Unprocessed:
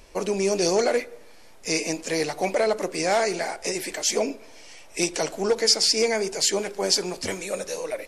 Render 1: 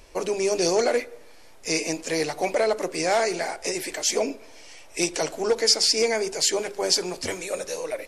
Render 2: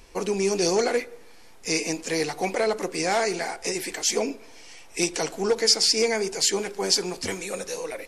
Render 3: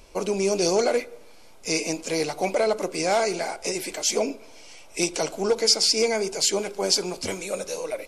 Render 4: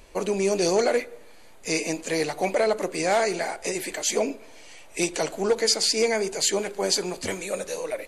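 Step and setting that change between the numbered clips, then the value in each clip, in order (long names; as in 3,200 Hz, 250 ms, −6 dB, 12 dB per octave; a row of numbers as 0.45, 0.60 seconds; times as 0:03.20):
notch filter, centre frequency: 200, 600, 1,800, 5,400 Hertz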